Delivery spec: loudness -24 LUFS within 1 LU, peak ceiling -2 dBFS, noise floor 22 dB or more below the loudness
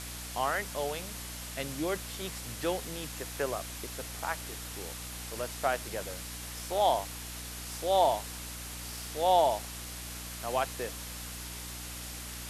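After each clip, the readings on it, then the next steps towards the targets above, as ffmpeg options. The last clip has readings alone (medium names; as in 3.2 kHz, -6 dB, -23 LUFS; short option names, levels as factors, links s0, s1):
hum 60 Hz; highest harmonic 300 Hz; hum level -43 dBFS; noise floor -42 dBFS; noise floor target -56 dBFS; loudness -33.5 LUFS; peak level -13.5 dBFS; loudness target -24.0 LUFS
-> -af "bandreject=f=60:t=h:w=6,bandreject=f=120:t=h:w=6,bandreject=f=180:t=h:w=6,bandreject=f=240:t=h:w=6,bandreject=f=300:t=h:w=6"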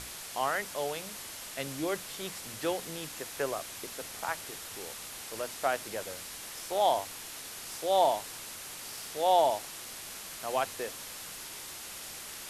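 hum not found; noise floor -44 dBFS; noise floor target -56 dBFS
-> -af "afftdn=nr=12:nf=-44"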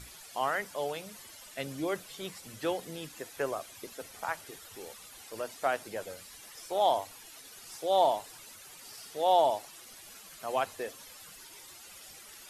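noise floor -51 dBFS; noise floor target -55 dBFS
-> -af "afftdn=nr=6:nf=-51"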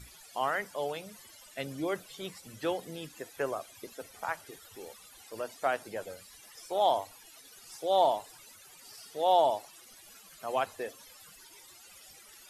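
noise floor -55 dBFS; loudness -32.5 LUFS; peak level -13.5 dBFS; loudness target -24.0 LUFS
-> -af "volume=2.66"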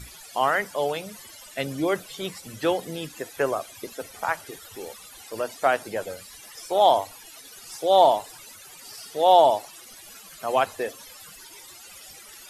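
loudness -24.0 LUFS; peak level -5.0 dBFS; noise floor -46 dBFS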